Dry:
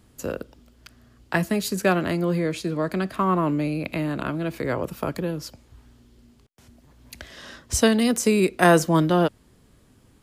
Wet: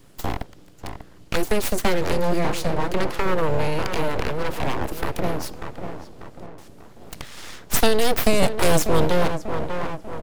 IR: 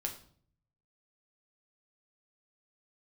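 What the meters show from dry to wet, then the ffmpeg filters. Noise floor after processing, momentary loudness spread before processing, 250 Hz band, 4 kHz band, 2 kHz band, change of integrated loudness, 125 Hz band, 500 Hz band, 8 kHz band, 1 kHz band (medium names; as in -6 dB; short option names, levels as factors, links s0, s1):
-46 dBFS, 14 LU, -4.0 dB, +3.5 dB, -0.5 dB, -1.0 dB, -0.5 dB, +1.0 dB, +0.5 dB, +0.5 dB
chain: -filter_complex "[0:a]asplit=2[s0][s1];[s1]adelay=592,lowpass=f=1300:p=1,volume=0.335,asplit=2[s2][s3];[s3]adelay=592,lowpass=f=1300:p=1,volume=0.47,asplit=2[s4][s5];[s5]adelay=592,lowpass=f=1300:p=1,volume=0.47,asplit=2[s6][s7];[s7]adelay=592,lowpass=f=1300:p=1,volume=0.47,asplit=2[s8][s9];[s9]adelay=592,lowpass=f=1300:p=1,volume=0.47[s10];[s0][s2][s4][s6][s8][s10]amix=inputs=6:normalize=0,acrossover=split=350|3000[s11][s12][s13];[s12]acompressor=threshold=0.0316:ratio=4[s14];[s11][s14][s13]amix=inputs=3:normalize=0,aeval=exprs='abs(val(0))':c=same,volume=2.11"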